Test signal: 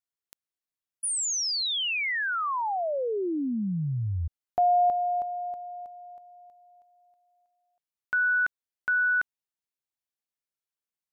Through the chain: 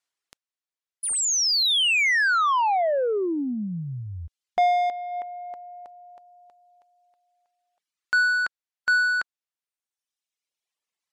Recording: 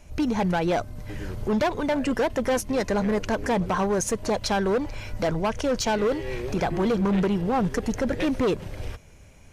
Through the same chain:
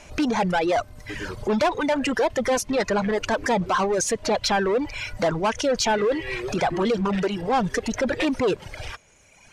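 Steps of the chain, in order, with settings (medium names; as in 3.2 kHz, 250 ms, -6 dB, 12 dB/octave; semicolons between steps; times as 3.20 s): overdrive pedal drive 15 dB, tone 7.3 kHz, clips at -17.5 dBFS; low-pass 9.7 kHz 12 dB/octave; reverb removal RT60 1.6 s; trim +2.5 dB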